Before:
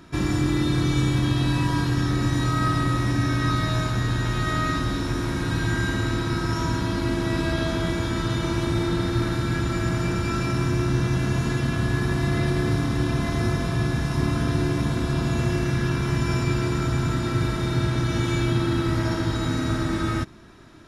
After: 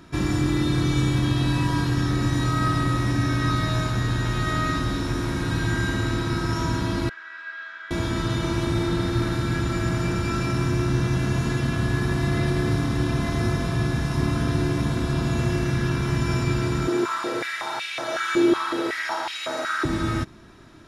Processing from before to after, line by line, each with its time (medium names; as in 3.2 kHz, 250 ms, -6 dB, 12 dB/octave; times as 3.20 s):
7.09–7.91 s: ladder band-pass 1.7 kHz, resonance 70%
16.87–19.85 s: step-sequenced high-pass 5.4 Hz 360–2500 Hz